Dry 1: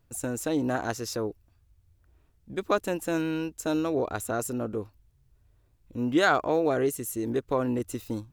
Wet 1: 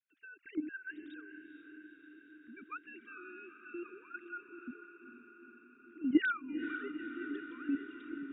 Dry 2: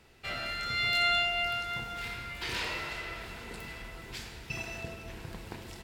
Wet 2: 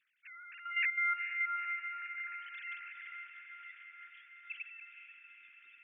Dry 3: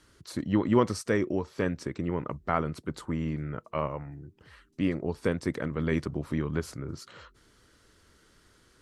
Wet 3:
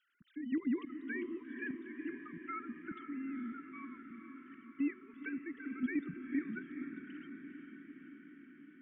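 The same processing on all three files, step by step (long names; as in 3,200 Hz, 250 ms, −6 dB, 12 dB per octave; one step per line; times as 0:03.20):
three sine waves on the formant tracks
elliptic band-stop filter 280–1,500 Hz, stop band 70 dB
output level in coarse steps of 10 dB
feedback delay with all-pass diffusion 461 ms, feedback 71%, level −9 dB
level −1 dB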